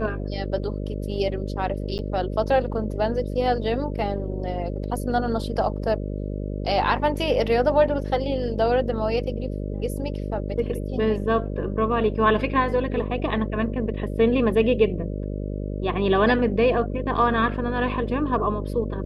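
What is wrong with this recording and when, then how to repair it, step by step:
buzz 50 Hz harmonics 12 -29 dBFS
1.98–1.99 gap 9.2 ms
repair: de-hum 50 Hz, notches 12; interpolate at 1.98, 9.2 ms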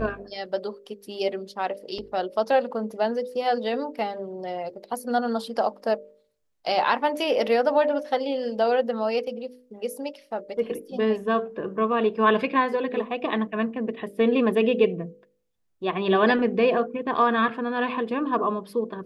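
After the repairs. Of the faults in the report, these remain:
none

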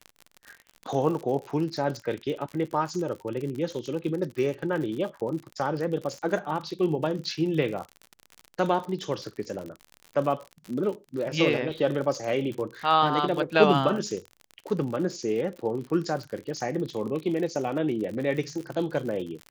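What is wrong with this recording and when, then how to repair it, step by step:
crackle 57/s -33 dBFS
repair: de-click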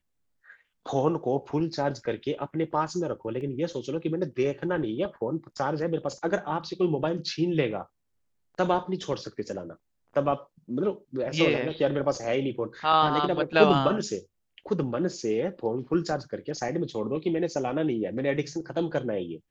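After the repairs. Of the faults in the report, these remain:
none

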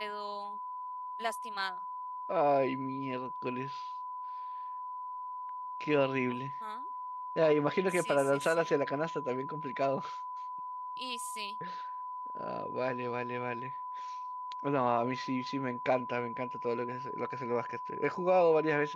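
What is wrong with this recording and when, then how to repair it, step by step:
tone 1000 Hz -38 dBFS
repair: notch 1000 Hz, Q 30

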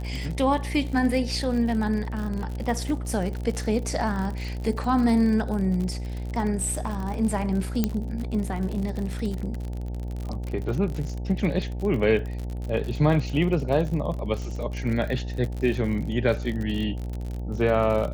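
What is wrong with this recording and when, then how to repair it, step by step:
buzz 60 Hz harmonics 15 -31 dBFS
crackle 52/s -30 dBFS
7.84 pop -9 dBFS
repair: de-click; de-hum 60 Hz, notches 15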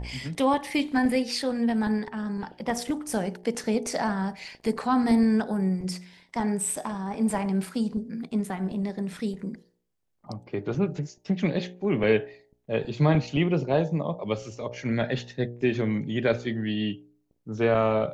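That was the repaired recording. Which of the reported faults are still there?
none

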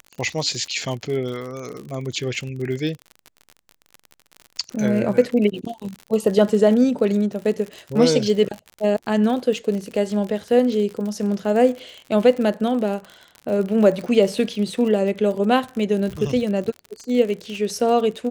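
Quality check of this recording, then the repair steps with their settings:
crackle 56/s -28 dBFS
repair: de-click

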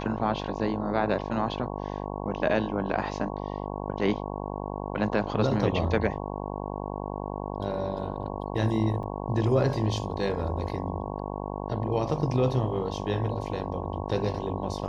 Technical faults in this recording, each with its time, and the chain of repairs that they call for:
buzz 50 Hz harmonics 22 -34 dBFS
9.03 gap 2 ms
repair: de-hum 50 Hz, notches 22; interpolate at 9.03, 2 ms

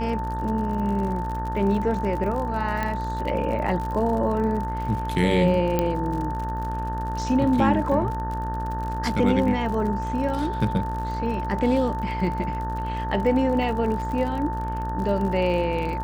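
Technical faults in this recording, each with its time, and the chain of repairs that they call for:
buzz 60 Hz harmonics 31 -30 dBFS
crackle 54/s -31 dBFS
tone 890 Hz -29 dBFS
2.83 pop -14 dBFS
5.79 pop -9 dBFS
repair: de-click; de-hum 60 Hz, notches 31; notch 890 Hz, Q 30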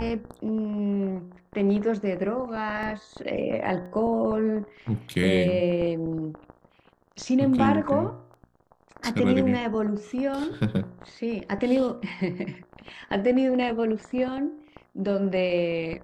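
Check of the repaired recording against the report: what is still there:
2.83 pop

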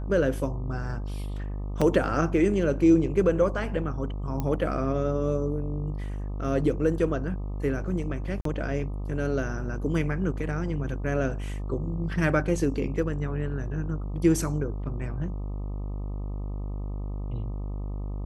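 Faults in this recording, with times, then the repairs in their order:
buzz 50 Hz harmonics 25 -32 dBFS
1.81–1.82 gap 5.6 ms
4.4 pop -17 dBFS
8.41–8.45 gap 43 ms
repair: de-click; de-hum 50 Hz, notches 25; interpolate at 1.81, 5.6 ms; interpolate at 8.41, 43 ms

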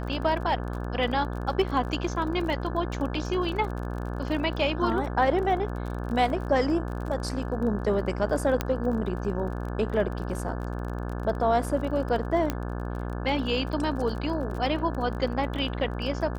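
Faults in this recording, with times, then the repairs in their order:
buzz 60 Hz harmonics 29 -32 dBFS
crackle 29/s -34 dBFS
8.61 pop -11 dBFS
12.5 pop -13 dBFS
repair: de-click; de-hum 60 Hz, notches 29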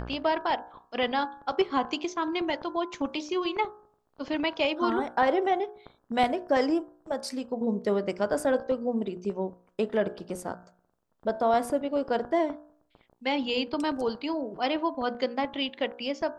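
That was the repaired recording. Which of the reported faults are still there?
none

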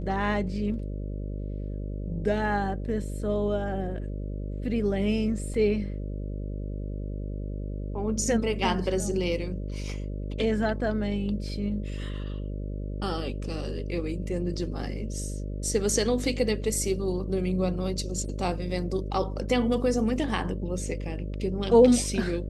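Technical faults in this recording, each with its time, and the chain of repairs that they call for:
buzz 50 Hz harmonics 12 -33 dBFS
5.54 gap 3.5 ms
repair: de-hum 50 Hz, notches 12; interpolate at 5.54, 3.5 ms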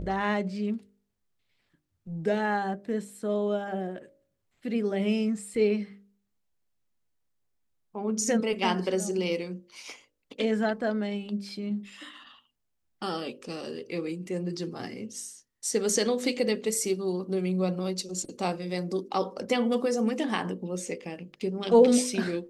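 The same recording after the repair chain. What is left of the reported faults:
none

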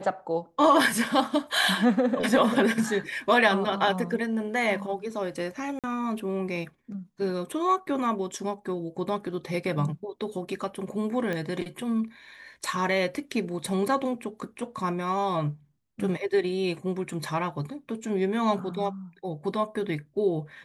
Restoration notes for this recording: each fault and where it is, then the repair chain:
5.79–5.84 gap 47 ms
11.33 pop -19 dBFS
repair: de-click; interpolate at 5.79, 47 ms

